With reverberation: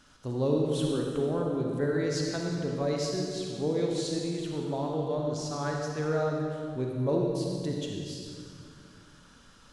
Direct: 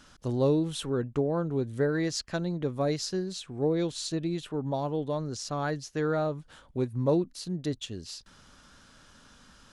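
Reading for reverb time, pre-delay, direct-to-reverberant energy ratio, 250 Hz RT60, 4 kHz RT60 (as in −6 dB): 2.2 s, 37 ms, −0.5 dB, 2.8 s, 1.9 s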